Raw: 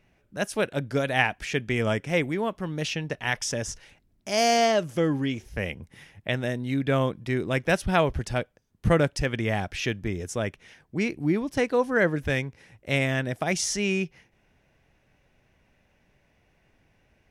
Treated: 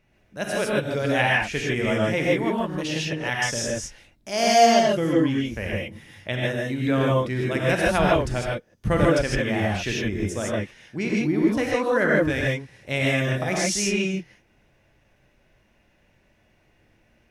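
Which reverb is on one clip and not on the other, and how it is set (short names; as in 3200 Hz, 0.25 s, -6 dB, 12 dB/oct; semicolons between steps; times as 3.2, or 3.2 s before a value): non-linear reverb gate 0.18 s rising, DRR -3.5 dB; gain -2 dB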